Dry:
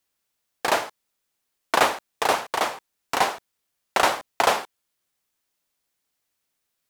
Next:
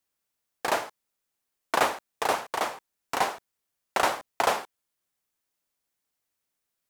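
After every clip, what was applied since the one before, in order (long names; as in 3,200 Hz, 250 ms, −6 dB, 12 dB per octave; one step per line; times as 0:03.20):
parametric band 3,600 Hz −2.5 dB 1.5 octaves
level −4 dB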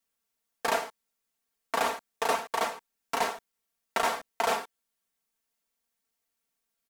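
comb filter 4.4 ms, depth 94%
brickwall limiter −12 dBFS, peak gain reduction 8 dB
level −3 dB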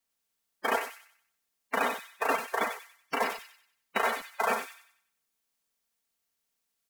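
spectral magnitudes quantised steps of 30 dB
delay with a high-pass on its return 94 ms, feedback 38%, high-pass 2,900 Hz, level −3 dB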